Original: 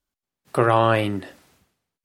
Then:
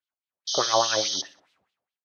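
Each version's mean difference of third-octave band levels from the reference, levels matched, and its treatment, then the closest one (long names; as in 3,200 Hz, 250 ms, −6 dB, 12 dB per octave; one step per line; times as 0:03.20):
11.0 dB: low-shelf EQ 250 Hz +6.5 dB
auto-filter band-pass sine 4.8 Hz 600–3,700 Hz
sound drawn into the spectrogram noise, 0:00.47–0:01.22, 3,000–6,500 Hz −28 dBFS
on a send: repeating echo 61 ms, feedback 41%, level −20.5 dB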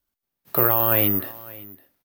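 7.5 dB: brickwall limiter −11.5 dBFS, peak gain reduction 8.5 dB
single-tap delay 559 ms −20.5 dB
bad sample-rate conversion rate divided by 3×, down filtered, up zero stuff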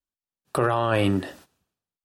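4.5 dB: notch filter 2,100 Hz, Q 6.1
noise gate −52 dBFS, range −16 dB
brickwall limiter −14.5 dBFS, peak gain reduction 11 dB
tape wow and flutter 56 cents
level +4 dB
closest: third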